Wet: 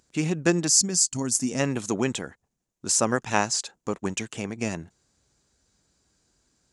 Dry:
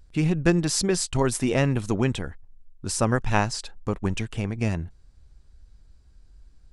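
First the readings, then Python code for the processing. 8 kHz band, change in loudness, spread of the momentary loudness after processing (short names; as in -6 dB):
+8.0 dB, +0.5 dB, 14 LU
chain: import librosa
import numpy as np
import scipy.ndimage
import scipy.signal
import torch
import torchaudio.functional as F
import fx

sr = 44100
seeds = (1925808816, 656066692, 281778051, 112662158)

y = fx.spec_box(x, sr, start_s=0.68, length_s=0.92, low_hz=280.0, high_hz=4300.0, gain_db=-11)
y = scipy.signal.sosfilt(scipy.signal.butter(2, 200.0, 'highpass', fs=sr, output='sos'), y)
y = fx.peak_eq(y, sr, hz=6800.0, db=11.5, octaves=0.56)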